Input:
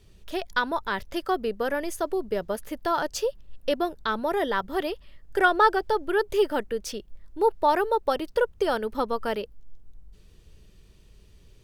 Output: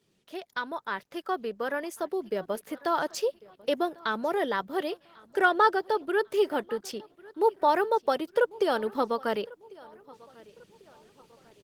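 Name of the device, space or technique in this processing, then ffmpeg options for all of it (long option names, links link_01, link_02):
video call: -filter_complex "[0:a]asplit=3[link_01][link_02][link_03];[link_01]afade=type=out:start_time=0.79:duration=0.02[link_04];[link_02]equalizer=frequency=1300:width_type=o:width=1.4:gain=4.5,afade=type=in:start_time=0.79:duration=0.02,afade=type=out:start_time=1.86:duration=0.02[link_05];[link_03]afade=type=in:start_time=1.86:duration=0.02[link_06];[link_04][link_05][link_06]amix=inputs=3:normalize=0,highpass=frequency=150:width=0.5412,highpass=frequency=150:width=1.3066,aecho=1:1:1096|2192|3288:0.0668|0.0274|0.0112,dynaudnorm=framelen=270:gausssize=17:maxgain=10dB,volume=-7.5dB" -ar 48000 -c:a libopus -b:a 16k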